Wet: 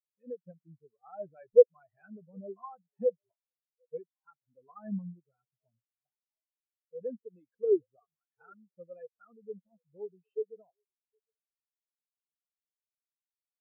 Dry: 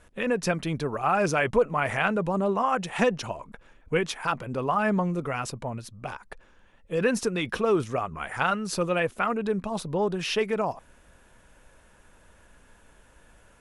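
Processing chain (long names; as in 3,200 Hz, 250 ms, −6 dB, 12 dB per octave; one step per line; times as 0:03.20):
0:07.22–0:07.68: dynamic equaliser 520 Hz, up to +5 dB, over −38 dBFS, Q 5.5
on a send: echo through a band-pass that steps 762 ms, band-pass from 460 Hz, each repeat 0.7 octaves, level −11.5 dB
on the sum: every bin expanded away from the loudest bin 4 to 1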